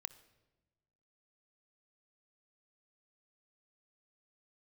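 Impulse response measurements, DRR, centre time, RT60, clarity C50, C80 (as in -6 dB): 13.0 dB, 5 ms, no single decay rate, 15.5 dB, 17.5 dB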